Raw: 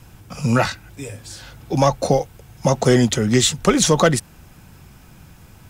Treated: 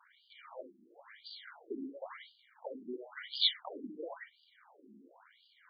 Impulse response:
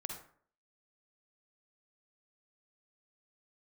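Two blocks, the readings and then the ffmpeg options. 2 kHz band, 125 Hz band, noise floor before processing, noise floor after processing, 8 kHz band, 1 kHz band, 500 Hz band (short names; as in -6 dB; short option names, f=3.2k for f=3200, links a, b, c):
-23.0 dB, under -40 dB, -47 dBFS, -69 dBFS, under -40 dB, -28.0 dB, -27.0 dB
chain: -filter_complex "[0:a]aeval=exprs='if(lt(val(0),0),0.251*val(0),val(0))':c=same,acrossover=split=2100[a][b];[a]acompressor=threshold=-33dB:ratio=10[c];[c][b]amix=inputs=2:normalize=0,asuperstop=centerf=2600:order=12:qfactor=5.2[d];[1:a]atrim=start_sample=2205,atrim=end_sample=3528,asetrate=33075,aresample=44100[e];[d][e]afir=irnorm=-1:irlink=0,afftfilt=real='re*between(b*sr/1024,270*pow(3500/270,0.5+0.5*sin(2*PI*0.96*pts/sr))/1.41,270*pow(3500/270,0.5+0.5*sin(2*PI*0.96*pts/sr))*1.41)':imag='im*between(b*sr/1024,270*pow(3500/270,0.5+0.5*sin(2*PI*0.96*pts/sr))/1.41,270*pow(3500/270,0.5+0.5*sin(2*PI*0.96*pts/sr))*1.41)':win_size=1024:overlap=0.75"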